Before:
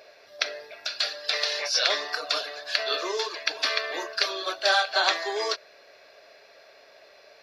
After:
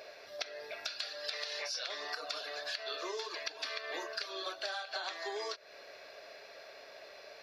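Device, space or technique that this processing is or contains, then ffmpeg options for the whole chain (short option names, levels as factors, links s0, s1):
serial compression, leveller first: -af "acompressor=threshold=0.0447:ratio=2.5,acompressor=threshold=0.0126:ratio=6,volume=1.12"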